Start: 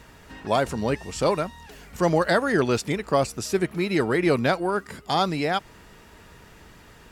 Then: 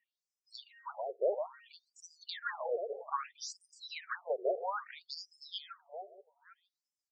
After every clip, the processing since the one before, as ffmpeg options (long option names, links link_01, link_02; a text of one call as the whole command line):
ffmpeg -i in.wav -filter_complex "[0:a]afftdn=noise_reduction=27:noise_floor=-42,asplit=2[link_01][link_02];[link_02]adelay=478,lowpass=frequency=4200:poles=1,volume=-9dB,asplit=2[link_03][link_04];[link_04]adelay=478,lowpass=frequency=4200:poles=1,volume=0.26,asplit=2[link_05][link_06];[link_06]adelay=478,lowpass=frequency=4200:poles=1,volume=0.26[link_07];[link_01][link_03][link_05][link_07]amix=inputs=4:normalize=0,afftfilt=real='re*between(b*sr/1024,500*pow(7100/500,0.5+0.5*sin(2*PI*0.61*pts/sr))/1.41,500*pow(7100/500,0.5+0.5*sin(2*PI*0.61*pts/sr))*1.41)':imag='im*between(b*sr/1024,500*pow(7100/500,0.5+0.5*sin(2*PI*0.61*pts/sr))/1.41,500*pow(7100/500,0.5+0.5*sin(2*PI*0.61*pts/sr))*1.41)':win_size=1024:overlap=0.75,volume=-7dB" out.wav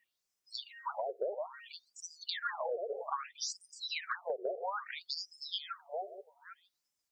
ffmpeg -i in.wav -af "acompressor=threshold=-41dB:ratio=8,volume=7.5dB" out.wav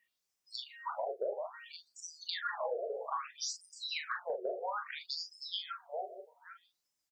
ffmpeg -i in.wav -af "aecho=1:1:24|40:0.299|0.447,volume=-1dB" out.wav